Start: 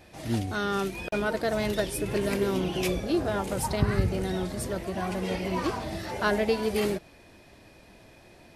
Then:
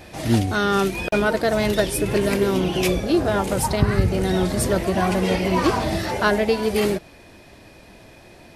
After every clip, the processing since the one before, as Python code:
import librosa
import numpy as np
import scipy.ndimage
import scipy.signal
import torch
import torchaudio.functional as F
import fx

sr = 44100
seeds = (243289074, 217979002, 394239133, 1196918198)

y = fx.rider(x, sr, range_db=10, speed_s=0.5)
y = F.gain(torch.from_numpy(y), 8.0).numpy()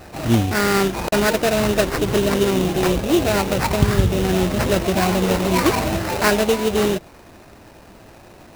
y = fx.sample_hold(x, sr, seeds[0], rate_hz=3300.0, jitter_pct=20)
y = F.gain(torch.from_numpy(y), 2.0).numpy()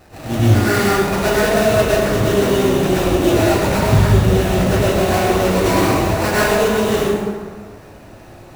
y = fx.rev_plate(x, sr, seeds[1], rt60_s=1.7, hf_ratio=0.55, predelay_ms=90, drr_db=-9.5)
y = F.gain(torch.from_numpy(y), -7.0).numpy()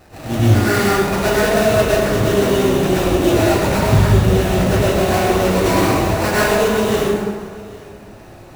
y = x + 10.0 ** (-22.5 / 20.0) * np.pad(x, (int(801 * sr / 1000.0), 0))[:len(x)]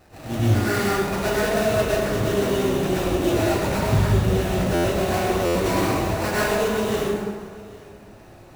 y = fx.buffer_glitch(x, sr, at_s=(4.74, 5.45), block=512, repeats=8)
y = F.gain(torch.from_numpy(y), -6.5).numpy()